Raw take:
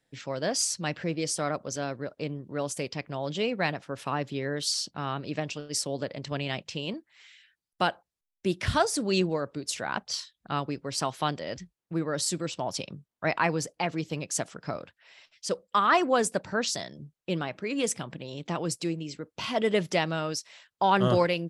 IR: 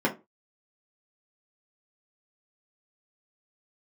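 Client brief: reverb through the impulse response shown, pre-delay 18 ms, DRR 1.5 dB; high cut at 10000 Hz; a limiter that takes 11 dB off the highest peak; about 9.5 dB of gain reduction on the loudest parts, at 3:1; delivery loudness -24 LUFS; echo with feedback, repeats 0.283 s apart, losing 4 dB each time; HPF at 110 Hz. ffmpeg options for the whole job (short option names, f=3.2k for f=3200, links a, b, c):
-filter_complex "[0:a]highpass=110,lowpass=10k,acompressor=threshold=-31dB:ratio=3,alimiter=level_in=3.5dB:limit=-24dB:level=0:latency=1,volume=-3.5dB,aecho=1:1:283|566|849|1132|1415|1698|1981|2264|2547:0.631|0.398|0.25|0.158|0.0994|0.0626|0.0394|0.0249|0.0157,asplit=2[a][b];[1:a]atrim=start_sample=2205,adelay=18[c];[b][c]afir=irnorm=-1:irlink=0,volume=-14dB[d];[a][d]amix=inputs=2:normalize=0,volume=9dB"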